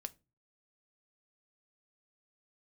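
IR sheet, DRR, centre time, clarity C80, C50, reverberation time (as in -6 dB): 10.0 dB, 2 ms, 31.5 dB, 24.0 dB, 0.30 s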